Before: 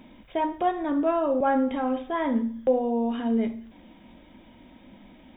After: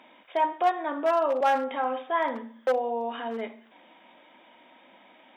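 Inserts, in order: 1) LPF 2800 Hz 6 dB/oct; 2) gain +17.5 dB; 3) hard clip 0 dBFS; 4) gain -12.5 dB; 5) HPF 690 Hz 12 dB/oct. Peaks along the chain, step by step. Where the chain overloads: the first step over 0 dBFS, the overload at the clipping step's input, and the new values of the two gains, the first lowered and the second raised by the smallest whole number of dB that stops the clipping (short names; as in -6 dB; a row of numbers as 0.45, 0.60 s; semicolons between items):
-12.0, +5.5, 0.0, -12.5, -11.5 dBFS; step 2, 5.5 dB; step 2 +11.5 dB, step 4 -6.5 dB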